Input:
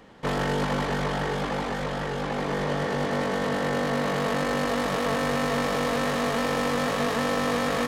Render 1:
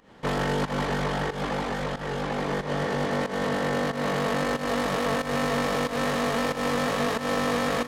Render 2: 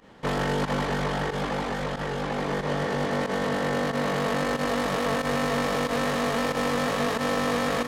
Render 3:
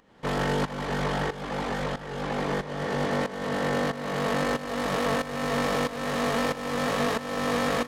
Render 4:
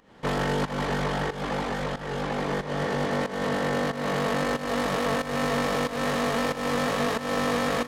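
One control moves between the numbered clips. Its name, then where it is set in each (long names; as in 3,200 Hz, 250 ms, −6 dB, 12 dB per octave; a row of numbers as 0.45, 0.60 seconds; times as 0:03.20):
fake sidechain pumping, release: 173, 66, 537, 260 milliseconds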